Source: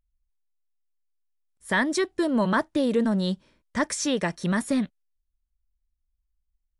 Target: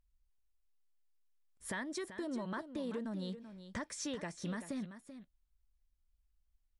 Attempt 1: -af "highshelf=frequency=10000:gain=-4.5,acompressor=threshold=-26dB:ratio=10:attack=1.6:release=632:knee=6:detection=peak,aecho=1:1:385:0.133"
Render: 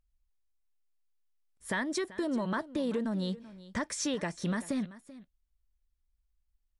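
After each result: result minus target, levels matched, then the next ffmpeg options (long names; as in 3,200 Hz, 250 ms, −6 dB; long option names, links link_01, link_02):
downward compressor: peak gain reduction −8 dB; echo-to-direct −6 dB
-af "highshelf=frequency=10000:gain=-4.5,acompressor=threshold=-35dB:ratio=10:attack=1.6:release=632:knee=6:detection=peak,aecho=1:1:385:0.133"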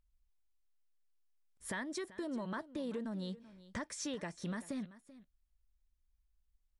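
echo-to-direct −6 dB
-af "highshelf=frequency=10000:gain=-4.5,acompressor=threshold=-35dB:ratio=10:attack=1.6:release=632:knee=6:detection=peak,aecho=1:1:385:0.266"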